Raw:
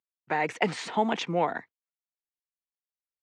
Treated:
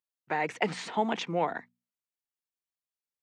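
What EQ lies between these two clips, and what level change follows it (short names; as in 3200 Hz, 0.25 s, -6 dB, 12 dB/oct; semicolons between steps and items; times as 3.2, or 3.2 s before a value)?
notches 60/120/180/240 Hz; -2.5 dB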